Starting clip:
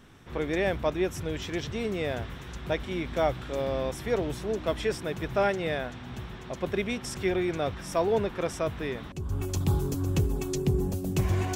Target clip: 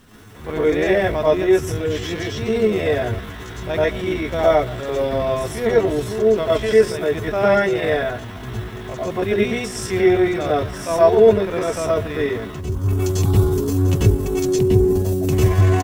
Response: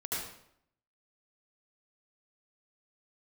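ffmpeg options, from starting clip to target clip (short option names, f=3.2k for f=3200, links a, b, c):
-filter_complex "[0:a]acrusher=bits=9:mix=0:aa=0.000001,asplit=2[a][b];[b]adelay=99,lowpass=f=1.1k:p=1,volume=-17dB,asplit=2[c][d];[d]adelay=99,lowpass=f=1.1k:p=1,volume=0.31,asplit=2[e][f];[f]adelay=99,lowpass=f=1.1k:p=1,volume=0.31[g];[a][c][e][g]amix=inputs=4:normalize=0[h];[1:a]atrim=start_sample=2205,atrim=end_sample=4410[i];[h][i]afir=irnorm=-1:irlink=0,atempo=0.73,volume=8dB"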